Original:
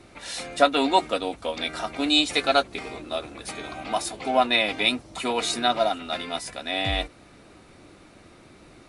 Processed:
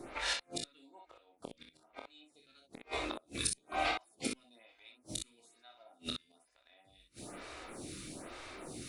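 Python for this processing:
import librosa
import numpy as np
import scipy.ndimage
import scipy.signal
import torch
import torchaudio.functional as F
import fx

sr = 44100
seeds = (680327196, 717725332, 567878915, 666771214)

y = fx.high_shelf(x, sr, hz=4800.0, db=fx.steps((0.0, 2.0), (2.91, 12.0)))
y = fx.gate_flip(y, sr, shuts_db=-22.0, range_db=-41)
y = fx.room_early_taps(y, sr, ms=(26, 46, 62), db=(-5.5, -11.0, -5.5))
y = fx.stagger_phaser(y, sr, hz=1.1)
y = y * 10.0 ** (3.0 / 20.0)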